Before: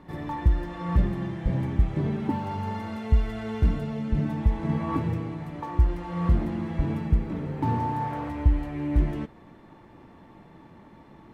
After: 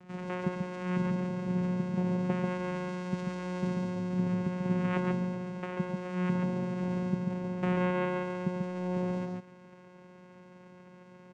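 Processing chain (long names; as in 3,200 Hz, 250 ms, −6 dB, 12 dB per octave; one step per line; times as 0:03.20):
tilt shelving filter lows −7.5 dB, about 1,400 Hz
notch filter 3,300 Hz, Q 7
channel vocoder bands 4, saw 181 Hz
multi-tap delay 96/140 ms −12.5/−3.5 dB
level +4 dB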